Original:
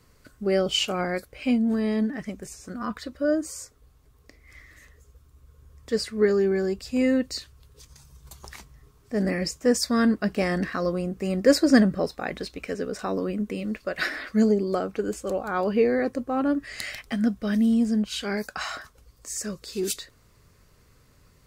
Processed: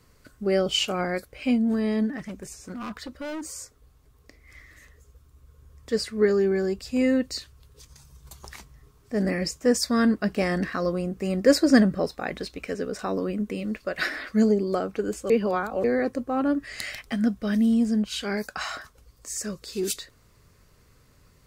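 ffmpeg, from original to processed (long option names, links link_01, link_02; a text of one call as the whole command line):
ffmpeg -i in.wav -filter_complex "[0:a]asettb=1/sr,asplit=3[link_01][link_02][link_03];[link_01]atrim=end=2.184[link_04];[link_02]atrim=start=2.18:end=3.53,asetpts=PTS-STARTPTS,afade=type=in:duration=0.004:curve=qsin,afade=type=out:start_time=1.346:duration=0.004:curve=qsin,asoftclip=type=hard:threshold=-31.5dB[link_05];[link_03]atrim=start=3.526[link_06];[link_04][link_05]acrossfade=duration=0.004:curve1=hsin:curve2=qsin[link_07];[link_07][link_06]acrossfade=duration=0.004:curve1=qsin:curve2=hsin,asplit=3[link_08][link_09][link_10];[link_08]atrim=end=15.302[link_11];[link_09]atrim=start=15.298:end=15.842,asetpts=PTS-STARTPTS,areverse[link_12];[link_10]atrim=start=15.838[link_13];[link_11][link_12]acrossfade=duration=0.004:curve1=hsin:curve2=hsin[link_14];[link_14][link_13]acrossfade=duration=0.004:curve1=hsin:curve2=hsin" out.wav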